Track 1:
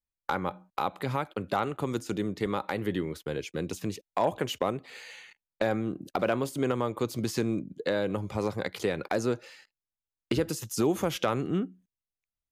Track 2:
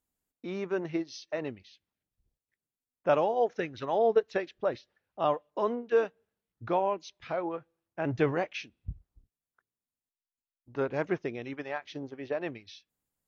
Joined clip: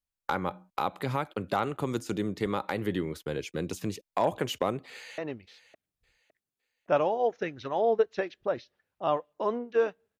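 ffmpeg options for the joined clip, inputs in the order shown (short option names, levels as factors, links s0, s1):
-filter_complex "[0:a]apad=whole_dur=10.19,atrim=end=10.19,atrim=end=5.182[s0];[1:a]atrim=start=1.348:end=6.36[s1];[s0][s1]acrossfade=d=0.004:c1=hsin:c2=hsin,asplit=2[s2][s3];[s3]afade=t=in:st=4.91:d=0.01,afade=t=out:st=5.18:d=0.01,aecho=0:1:560|1120|1680:0.177828|0.0533484|0.0160045[s4];[s2][s4]amix=inputs=2:normalize=0"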